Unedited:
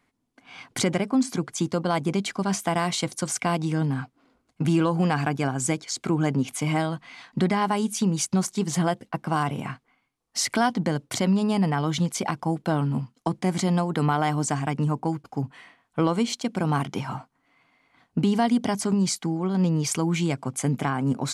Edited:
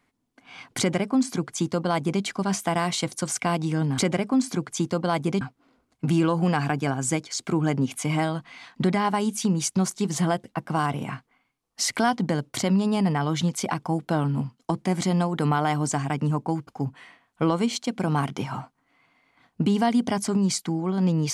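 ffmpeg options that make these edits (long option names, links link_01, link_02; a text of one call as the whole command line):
ffmpeg -i in.wav -filter_complex "[0:a]asplit=3[link_01][link_02][link_03];[link_01]atrim=end=3.982[link_04];[link_02]atrim=start=0.788:end=2.222[link_05];[link_03]atrim=start=3.978[link_06];[link_04][link_05]acrossfade=duration=0.004:curve1=hsin:curve2=hsin[link_07];[link_07][link_06]acrossfade=duration=0.004:curve1=hsin:curve2=hsin" out.wav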